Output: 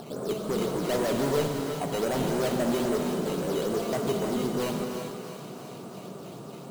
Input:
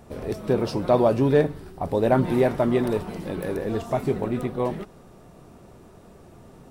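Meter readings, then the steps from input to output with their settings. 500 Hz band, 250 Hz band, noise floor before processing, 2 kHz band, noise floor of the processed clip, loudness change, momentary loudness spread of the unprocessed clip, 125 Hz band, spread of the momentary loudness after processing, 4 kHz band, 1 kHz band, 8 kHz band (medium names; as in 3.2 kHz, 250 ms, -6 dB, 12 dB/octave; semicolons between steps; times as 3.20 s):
-5.0 dB, -4.0 dB, -49 dBFS, -2.0 dB, -42 dBFS, -5.0 dB, 11 LU, -6.5 dB, 15 LU, +5.5 dB, -4.5 dB, no reading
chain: Chebyshev band-pass 140–1400 Hz, order 3; in parallel at +1.5 dB: peak limiter -17.5 dBFS, peak gain reduction 10.5 dB; on the sum: upward compressor, threshold -31 dBFS; decimation with a swept rate 9×, swing 100% 3.7 Hz; saturation -20.5 dBFS, distortion -7 dB; on a send: thinning echo 329 ms, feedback 68%, high-pass 420 Hz, level -9.5 dB; on the sum: gated-style reverb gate 450 ms flat, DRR 2.5 dB; trim -5 dB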